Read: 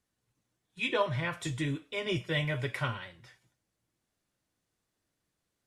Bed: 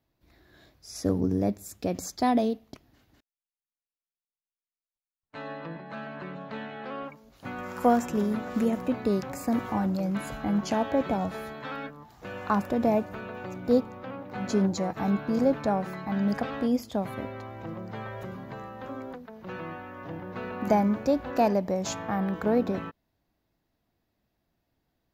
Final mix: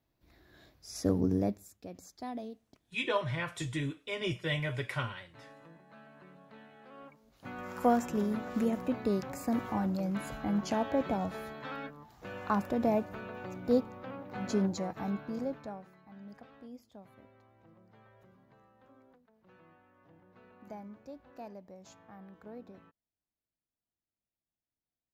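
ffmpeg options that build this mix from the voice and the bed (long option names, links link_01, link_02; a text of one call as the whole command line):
ffmpeg -i stem1.wav -i stem2.wav -filter_complex "[0:a]adelay=2150,volume=-2dB[link_01];[1:a]volume=9.5dB,afade=type=out:start_time=1.36:duration=0.38:silence=0.199526,afade=type=in:start_time=6.91:duration=0.82:silence=0.251189,afade=type=out:start_time=14.51:duration=1.4:silence=0.11885[link_02];[link_01][link_02]amix=inputs=2:normalize=0" out.wav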